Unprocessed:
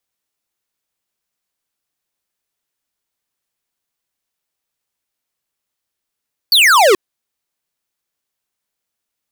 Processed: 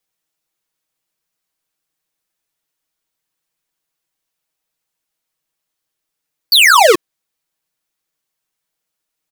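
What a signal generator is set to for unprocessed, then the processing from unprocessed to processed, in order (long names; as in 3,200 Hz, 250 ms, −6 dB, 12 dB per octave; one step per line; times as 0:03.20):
single falling chirp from 4,700 Hz, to 350 Hz, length 0.43 s square, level −9 dB
comb filter 6.3 ms, depth 67%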